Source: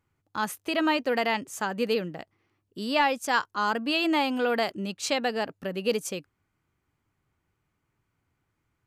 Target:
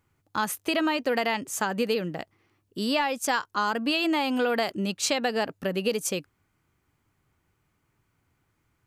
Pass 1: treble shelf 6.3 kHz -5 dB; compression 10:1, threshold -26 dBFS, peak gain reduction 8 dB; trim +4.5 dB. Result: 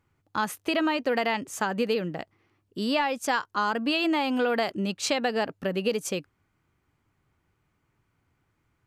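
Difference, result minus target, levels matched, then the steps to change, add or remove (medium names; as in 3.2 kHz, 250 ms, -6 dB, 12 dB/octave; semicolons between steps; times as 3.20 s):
8 kHz band -4.0 dB
change: treble shelf 6.3 kHz +3.5 dB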